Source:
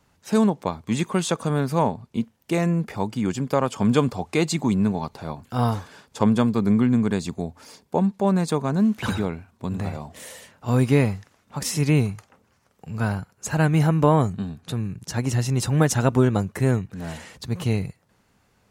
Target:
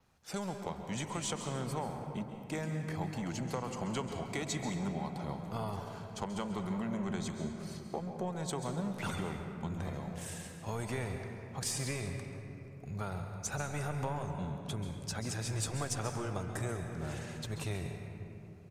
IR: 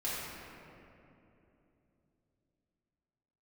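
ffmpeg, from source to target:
-filter_complex "[0:a]acrossover=split=520|6200[s0][s1][s2];[s0]asoftclip=type=tanh:threshold=0.0531[s3];[s3][s1][s2]amix=inputs=3:normalize=0,asetrate=40440,aresample=44100,atempo=1.09051,acompressor=threshold=0.0447:ratio=6,aeval=exprs='0.141*(cos(1*acos(clip(val(0)/0.141,-1,1)))-cos(1*PI/2))+0.00355*(cos(6*acos(clip(val(0)/0.141,-1,1)))-cos(6*PI/2))':c=same,asplit=2[s4][s5];[1:a]atrim=start_sample=2205,adelay=133[s6];[s5][s6]afir=irnorm=-1:irlink=0,volume=0.316[s7];[s4][s7]amix=inputs=2:normalize=0,adynamicequalizer=threshold=0.00224:dfrequency=8500:dqfactor=2.3:tfrequency=8500:tqfactor=2.3:attack=5:release=100:ratio=0.375:range=3:mode=boostabove:tftype=bell,volume=0.422"

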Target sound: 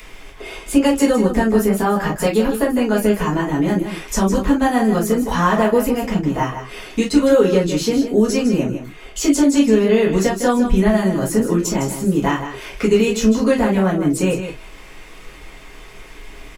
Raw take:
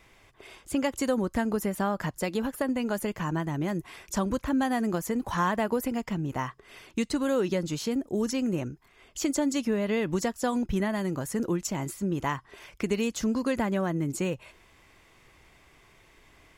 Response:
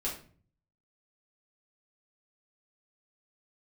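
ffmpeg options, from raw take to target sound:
-filter_complex "[0:a]asettb=1/sr,asplit=3[s0][s1][s2];[s0]atrim=end=13.654[s3];[s1]atrim=start=13.65:end=14.18,asetpts=PTS-STARTPTS,afade=t=in:d=0.004:c=qsin,afade=t=out:st=0.526:d=0.004:c=qsin,bandreject=f=6700:w=12[s4];[s2]atrim=start=14.176[s5];[s3][s4]acrossfade=d=0.004:c1=hsin:c2=qsin[s6];[s6][s5]acrossfade=d=0.004:c1=qsin:c2=hsin,asplit=2[s7][s8];[s8]acompressor=threshold=0.01:ratio=6,volume=1.06[s9];[s7][s9]amix=inputs=2:normalize=0,aecho=1:1:157:0.335[s10];[1:a]atrim=start_sample=2205,atrim=end_sample=3087,asetrate=48510,aresample=44100[s11];[s10][s11]afir=irnorm=-1:irlink=0,acrossover=split=120|1200[s12][s13][s14];[s14]acompressor=mode=upward:threshold=0.00501:ratio=2.5[s15];[s12][s13][s15]amix=inputs=3:normalize=0,volume=2.11"

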